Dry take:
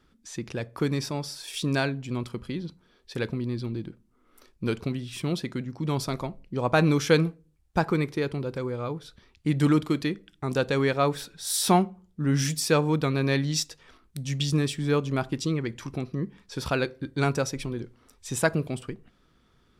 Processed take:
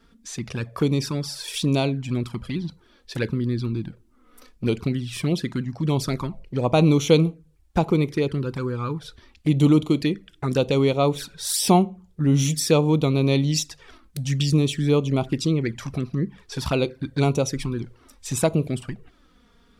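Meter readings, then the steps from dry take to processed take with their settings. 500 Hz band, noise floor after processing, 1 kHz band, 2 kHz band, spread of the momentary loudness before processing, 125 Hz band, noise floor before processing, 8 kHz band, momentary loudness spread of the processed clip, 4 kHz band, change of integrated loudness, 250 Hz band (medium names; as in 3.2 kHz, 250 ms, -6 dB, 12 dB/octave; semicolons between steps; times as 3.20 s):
+4.0 dB, -58 dBFS, +1.5 dB, -2.5 dB, 13 LU, +5.5 dB, -64 dBFS, +3.5 dB, 13 LU, +3.5 dB, +4.5 dB, +5.0 dB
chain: in parallel at -2.5 dB: compression 6:1, threshold -33 dBFS, peak gain reduction 17.5 dB; on the sum: touch-sensitive flanger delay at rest 4.5 ms, full sweep at -20.5 dBFS; trim +4 dB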